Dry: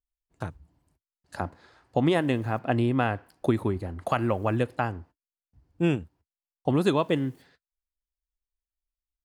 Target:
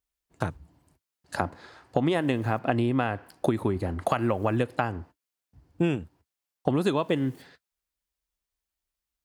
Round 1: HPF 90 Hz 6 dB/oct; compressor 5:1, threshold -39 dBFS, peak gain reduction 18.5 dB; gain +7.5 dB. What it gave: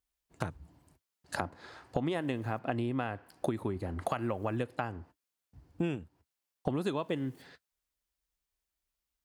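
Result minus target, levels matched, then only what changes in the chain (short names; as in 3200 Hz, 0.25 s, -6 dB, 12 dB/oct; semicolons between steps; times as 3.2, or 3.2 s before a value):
compressor: peak gain reduction +8 dB
change: compressor 5:1, threshold -29 dBFS, peak gain reduction 10.5 dB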